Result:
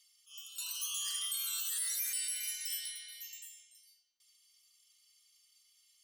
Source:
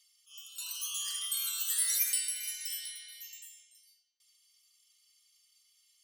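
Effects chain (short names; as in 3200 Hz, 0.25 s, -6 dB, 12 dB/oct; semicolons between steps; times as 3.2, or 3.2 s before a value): limiter -27 dBFS, peak gain reduction 9.5 dB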